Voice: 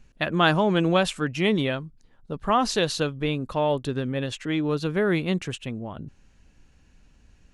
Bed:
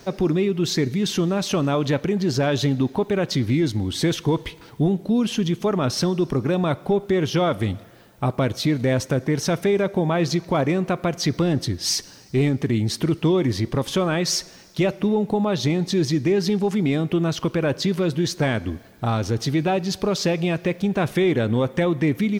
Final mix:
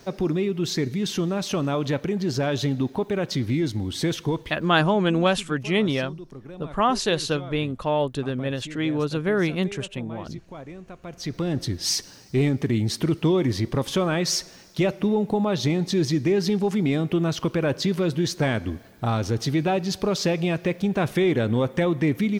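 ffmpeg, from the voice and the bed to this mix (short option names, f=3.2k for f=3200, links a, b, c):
-filter_complex "[0:a]adelay=4300,volume=0.5dB[a];[1:a]volume=14dB,afade=t=out:st=4.23:d=0.64:silence=0.16788,afade=t=in:st=11.01:d=0.78:silence=0.133352[b];[a][b]amix=inputs=2:normalize=0"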